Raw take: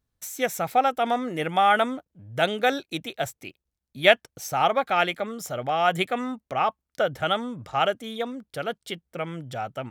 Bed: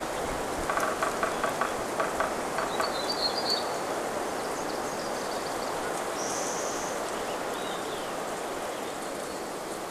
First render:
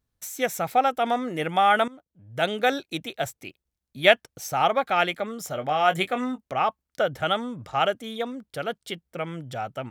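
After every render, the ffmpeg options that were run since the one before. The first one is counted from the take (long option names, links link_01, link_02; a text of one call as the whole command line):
ffmpeg -i in.wav -filter_complex "[0:a]asettb=1/sr,asplit=3[link_01][link_02][link_03];[link_01]atrim=end=5.494[link_04];[link_02]atrim=start=5.49:end=6.42,asetpts=PTS-STARTPTS,afade=type=in:duration=0.004:curve=qsin,afade=type=out:start_time=0.926:duration=0.004:curve=qsin,asplit=2[link_05][link_06];[link_06]adelay=20,volume=-9dB[link_07];[link_05][link_07]amix=inputs=2:normalize=0,atrim=end_sample=41013[link_08];[link_03]atrim=start=6.416[link_09];[link_04][link_08]acrossfade=duration=0.004:curve1=hsin:curve2=qsin[link_10];[link_10][link_09]acrossfade=duration=0.004:curve1=qsin:curve2=hsin,asplit=2[link_11][link_12];[link_11]atrim=end=1.88,asetpts=PTS-STARTPTS,afade=type=out:start_time=1.876:duration=0.004:curve=hsin:silence=0.125893[link_13];[link_12]atrim=start=1.88,asetpts=PTS-STARTPTS,afade=type=in:duration=0.69:silence=0.125893[link_14];[link_13][link_14]concat=n=2:v=0:a=1" out.wav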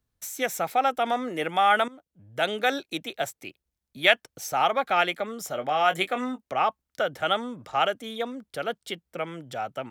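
ffmpeg -i in.wav -filter_complex "[0:a]acrossover=split=210|810|4100[link_01][link_02][link_03][link_04];[link_01]acompressor=threshold=-51dB:ratio=6[link_05];[link_02]alimiter=limit=-22dB:level=0:latency=1[link_06];[link_05][link_06][link_03][link_04]amix=inputs=4:normalize=0" out.wav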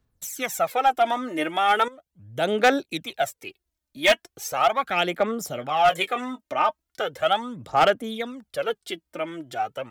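ffmpeg -i in.wav -af "aphaser=in_gain=1:out_gain=1:delay=3.3:decay=0.62:speed=0.38:type=sinusoidal,asoftclip=type=hard:threshold=-11.5dB" out.wav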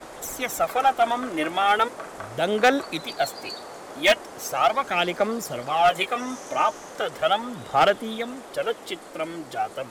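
ffmpeg -i in.wav -i bed.wav -filter_complex "[1:a]volume=-8.5dB[link_01];[0:a][link_01]amix=inputs=2:normalize=0" out.wav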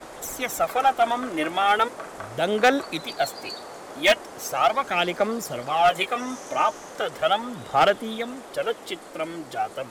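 ffmpeg -i in.wav -af anull out.wav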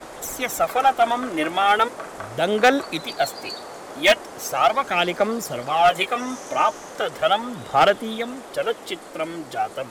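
ffmpeg -i in.wav -af "volume=2.5dB" out.wav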